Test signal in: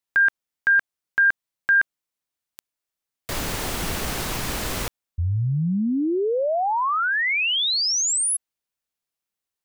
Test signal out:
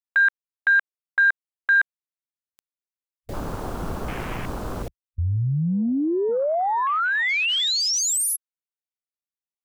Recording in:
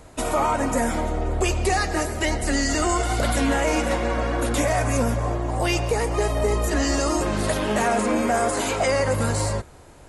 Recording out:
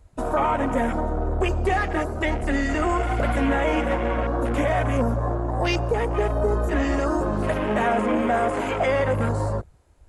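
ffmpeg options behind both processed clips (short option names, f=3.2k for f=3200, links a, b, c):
-af "afwtdn=0.0316"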